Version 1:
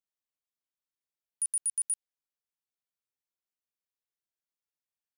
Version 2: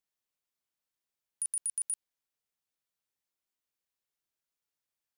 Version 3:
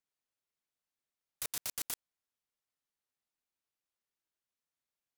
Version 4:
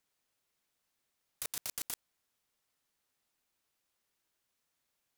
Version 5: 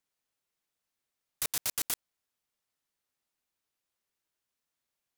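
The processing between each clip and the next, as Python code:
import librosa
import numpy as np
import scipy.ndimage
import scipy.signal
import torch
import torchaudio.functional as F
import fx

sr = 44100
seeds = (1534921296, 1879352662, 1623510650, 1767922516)

y1 = fx.over_compress(x, sr, threshold_db=-32.0, ratio=-1.0)
y2 = fx.noise_mod_delay(y1, sr, seeds[0], noise_hz=1400.0, depth_ms=0.053)
y2 = y2 * 10.0 ** (-3.5 / 20.0)
y3 = fx.over_compress(y2, sr, threshold_db=-41.0, ratio=-0.5)
y3 = y3 * 10.0 ** (4.5 / 20.0)
y4 = fx.leveller(y3, sr, passes=3)
y4 = y4 * 10.0 ** (1.0 / 20.0)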